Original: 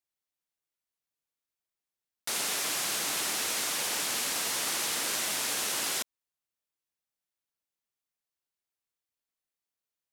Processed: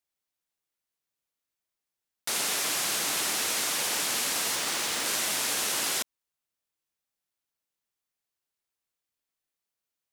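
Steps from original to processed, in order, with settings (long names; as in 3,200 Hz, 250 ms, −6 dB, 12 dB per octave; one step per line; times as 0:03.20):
0:04.55–0:05.06: running median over 3 samples
level +2.5 dB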